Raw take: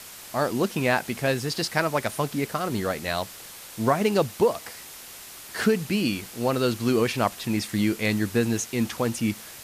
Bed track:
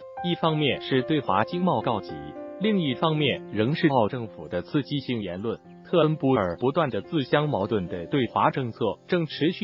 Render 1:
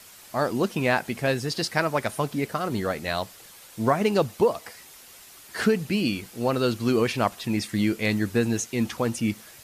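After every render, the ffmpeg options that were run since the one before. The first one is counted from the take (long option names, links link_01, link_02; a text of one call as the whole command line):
ffmpeg -i in.wav -af "afftdn=noise_reduction=7:noise_floor=-43" out.wav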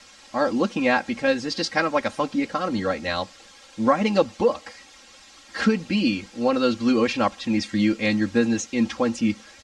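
ffmpeg -i in.wav -af "lowpass=frequency=6700:width=0.5412,lowpass=frequency=6700:width=1.3066,aecho=1:1:3.7:0.88" out.wav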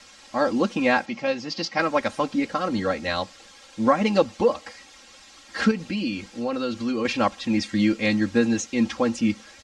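ffmpeg -i in.wav -filter_complex "[0:a]asplit=3[link_01][link_02][link_03];[link_01]afade=type=out:start_time=1.05:duration=0.02[link_04];[link_02]highpass=frequency=130:width=0.5412,highpass=frequency=130:width=1.3066,equalizer=frequency=270:width_type=q:width=4:gain=-6,equalizer=frequency=450:width_type=q:width=4:gain=-8,equalizer=frequency=1600:width_type=q:width=4:gain=-9,equalizer=frequency=3800:width_type=q:width=4:gain=-6,lowpass=frequency=6000:width=0.5412,lowpass=frequency=6000:width=1.3066,afade=type=in:start_time=1.05:duration=0.02,afade=type=out:start_time=1.78:duration=0.02[link_05];[link_03]afade=type=in:start_time=1.78:duration=0.02[link_06];[link_04][link_05][link_06]amix=inputs=3:normalize=0,asettb=1/sr,asplit=3[link_07][link_08][link_09];[link_07]atrim=end=5.714[link_10];[link_08]atrim=start=5.71:end=7.05,asetpts=PTS-STARTPTS,afade=type=in:duration=0.004:curve=qsin,afade=type=out:start_time=1.336:duration=0.004:curve=qsin,acompressor=threshold=-27dB:ratio=2:attack=3.2:release=140:knee=1:detection=peak[link_11];[link_09]atrim=start=7.046[link_12];[link_10][link_11]acrossfade=duration=0.004:curve1=hsin:curve2=qsin[link_13];[link_13][link_12]acrossfade=duration=0.004:curve1=qsin:curve2=hsin" out.wav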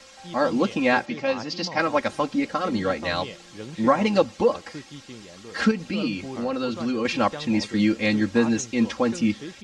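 ffmpeg -i in.wav -i bed.wav -filter_complex "[1:a]volume=-14dB[link_01];[0:a][link_01]amix=inputs=2:normalize=0" out.wav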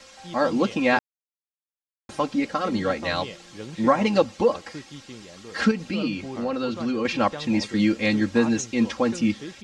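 ffmpeg -i in.wav -filter_complex "[0:a]asettb=1/sr,asplit=3[link_01][link_02][link_03];[link_01]atrim=end=5.974[link_04];[link_02]atrim=start=5.97:end=7.39,asetpts=PTS-STARTPTS,afade=type=in:duration=0.004:curve=qsin,afade=type=out:start_time=1.416:duration=0.004:curve=qsin,highshelf=frequency=6000:gain=-5[link_05];[link_03]atrim=start=7.386[link_06];[link_04][link_05]acrossfade=duration=0.004:curve1=hsin:curve2=qsin[link_07];[link_07][link_06]acrossfade=duration=0.004:curve1=qsin:curve2=hsin,asplit=3[link_08][link_09][link_10];[link_08]atrim=end=0.99,asetpts=PTS-STARTPTS,afade=type=out:start_time=0.986:duration=0.004:curve=hsin[link_11];[link_09]atrim=start=0.99:end=2.09,asetpts=PTS-STARTPTS,volume=0[link_12];[link_10]atrim=start=2.09,asetpts=PTS-STARTPTS,afade=type=in:duration=0.004:curve=hsin[link_13];[link_11][link_12][link_13]concat=n=3:v=0:a=1" out.wav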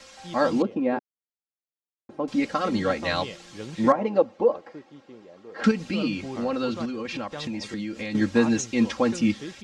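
ffmpeg -i in.wav -filter_complex "[0:a]asettb=1/sr,asplit=3[link_01][link_02][link_03];[link_01]atrim=end=0.624[link_04];[link_02]atrim=start=0.62:end=2.28,asetpts=PTS-STARTPTS,afade=type=in:duration=0.004:curve=qsin,afade=type=out:start_time=1.656:duration=0.004:curve=qsin,bandpass=frequency=340:width_type=q:width=1.1[link_05];[link_03]atrim=start=2.276[link_06];[link_04][link_05]acrossfade=duration=0.004:curve1=hsin:curve2=qsin[link_07];[link_07][link_06]acrossfade=duration=0.004:curve1=qsin:curve2=hsin,asettb=1/sr,asplit=3[link_08][link_09][link_10];[link_08]atrim=end=3.924[link_11];[link_09]atrim=start=3.92:end=5.64,asetpts=PTS-STARTPTS,afade=type=in:duration=0.004:curve=qsin,afade=type=out:start_time=1.716:duration=0.004:curve=qsin,bandpass=frequency=520:width_type=q:width=1[link_12];[link_10]atrim=start=5.636[link_13];[link_11][link_12]acrossfade=duration=0.004:curve1=hsin:curve2=qsin[link_14];[link_14][link_13]acrossfade=duration=0.004:curve1=qsin:curve2=hsin,asettb=1/sr,asplit=3[link_15][link_16][link_17];[link_15]atrim=end=6.854[link_18];[link_16]atrim=start=6.85:end=8.15,asetpts=PTS-STARTPTS,afade=type=in:duration=0.004:curve=qsin,afade=type=out:start_time=1.296:duration=0.004:curve=qsin,acompressor=threshold=-28dB:ratio=10:attack=3.2:release=140:knee=1:detection=peak[link_19];[link_17]atrim=start=8.146[link_20];[link_18][link_19]acrossfade=duration=0.004:curve1=hsin:curve2=qsin[link_21];[link_21][link_20]acrossfade=duration=0.004:curve1=qsin:curve2=hsin" out.wav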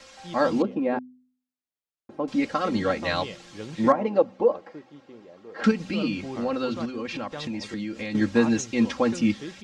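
ffmpeg -i in.wav -af "highshelf=frequency=7200:gain=-4.5,bandreject=frequency=63.17:width_type=h:width=4,bandreject=frequency=126.34:width_type=h:width=4,bandreject=frequency=189.51:width_type=h:width=4,bandreject=frequency=252.68:width_type=h:width=4" out.wav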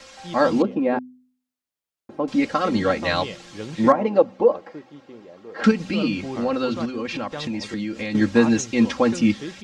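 ffmpeg -i in.wav -af "volume=4dB,alimiter=limit=-2dB:level=0:latency=1" out.wav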